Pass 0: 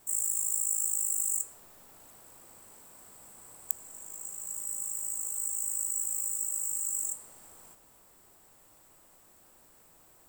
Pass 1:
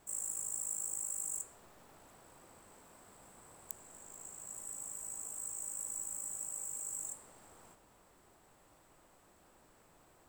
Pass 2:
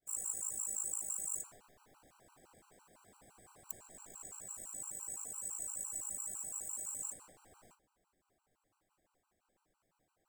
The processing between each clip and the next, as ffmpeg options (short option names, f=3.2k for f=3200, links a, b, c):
-af "aemphasis=mode=reproduction:type=50kf"
-af "agate=range=-33dB:threshold=-54dB:ratio=3:detection=peak,afftfilt=real='re*gt(sin(2*PI*5.9*pts/sr)*(1-2*mod(floor(b*sr/1024/780),2)),0)':imag='im*gt(sin(2*PI*5.9*pts/sr)*(1-2*mod(floor(b*sr/1024/780),2)),0)':win_size=1024:overlap=0.75,volume=3dB"